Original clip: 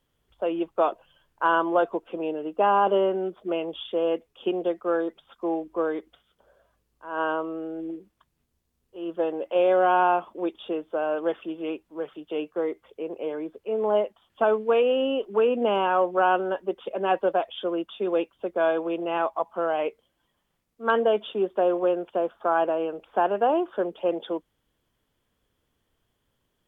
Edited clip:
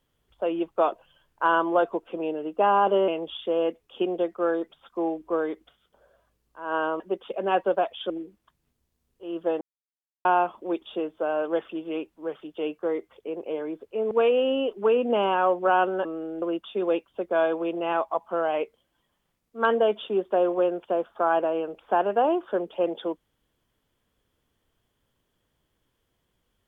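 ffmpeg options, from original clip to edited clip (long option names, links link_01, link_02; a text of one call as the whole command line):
ffmpeg -i in.wav -filter_complex "[0:a]asplit=9[link_01][link_02][link_03][link_04][link_05][link_06][link_07][link_08][link_09];[link_01]atrim=end=3.082[link_10];[link_02]atrim=start=3.538:end=7.462[link_11];[link_03]atrim=start=16.568:end=17.672[link_12];[link_04]atrim=start=7.828:end=9.34,asetpts=PTS-STARTPTS,afade=type=out:start_time=1.508:duration=0.004:curve=hsin[link_13];[link_05]atrim=start=9.34:end=9.98,asetpts=PTS-STARTPTS,volume=0[link_14];[link_06]atrim=start=9.98:end=13.842,asetpts=PTS-STARTPTS,afade=type=in:duration=0.004:curve=hsin[link_15];[link_07]atrim=start=14.628:end=16.572[link_16];[link_08]atrim=start=7.458:end=7.832[link_17];[link_09]atrim=start=17.668[link_18];[link_10][link_11]acrossfade=duration=0.004:curve1=hsin:curve2=hsin[link_19];[link_19][link_12]acrossfade=duration=0.004:curve1=hsin:curve2=hsin[link_20];[link_13][link_14][link_15]concat=n=3:v=0:a=1[link_21];[link_20][link_21]acrossfade=duration=0.004:curve1=hsin:curve2=hsin[link_22];[link_22][link_16]acrossfade=duration=0.004:curve1=hsin:curve2=hsin[link_23];[link_23][link_17]acrossfade=duration=0.004:curve1=hsin:curve2=hsin[link_24];[link_24][link_18]acrossfade=duration=0.004:curve1=hsin:curve2=hsin" out.wav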